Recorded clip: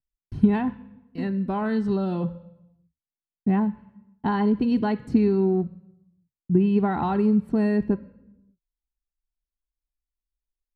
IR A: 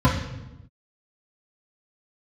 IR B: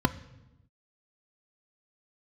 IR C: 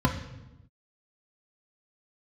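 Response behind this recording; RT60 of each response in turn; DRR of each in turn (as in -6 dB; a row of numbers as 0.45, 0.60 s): B; 0.95, 0.95, 0.95 s; -7.5, 10.0, 0.0 dB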